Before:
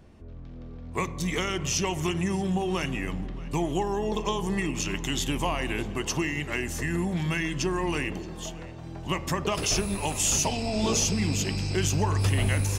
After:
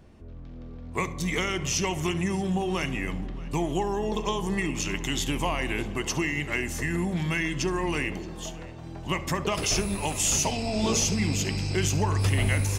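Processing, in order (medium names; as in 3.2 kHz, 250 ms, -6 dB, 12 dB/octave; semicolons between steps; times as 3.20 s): dynamic bell 2.1 kHz, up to +5 dB, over -49 dBFS, Q 8; on a send: flutter echo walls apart 11.8 m, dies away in 0.23 s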